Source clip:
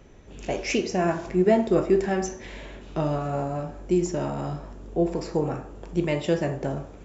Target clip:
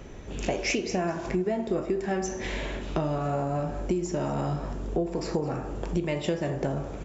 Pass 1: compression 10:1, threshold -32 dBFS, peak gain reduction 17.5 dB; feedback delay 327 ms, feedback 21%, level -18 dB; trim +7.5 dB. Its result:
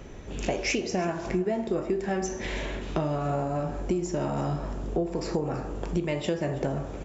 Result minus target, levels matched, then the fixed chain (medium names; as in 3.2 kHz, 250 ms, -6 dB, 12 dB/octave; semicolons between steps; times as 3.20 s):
echo 115 ms late
compression 10:1, threshold -32 dBFS, peak gain reduction 17.5 dB; feedback delay 212 ms, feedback 21%, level -18 dB; trim +7.5 dB